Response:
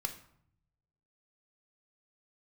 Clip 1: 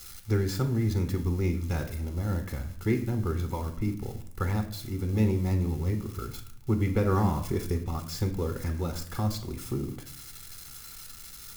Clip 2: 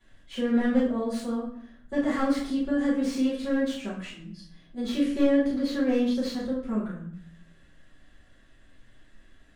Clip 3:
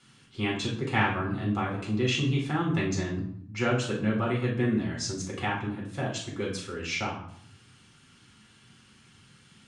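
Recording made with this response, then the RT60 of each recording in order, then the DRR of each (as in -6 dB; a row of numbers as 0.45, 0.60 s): 1; 0.65, 0.65, 0.65 s; 5.5, -12.5, -3.5 dB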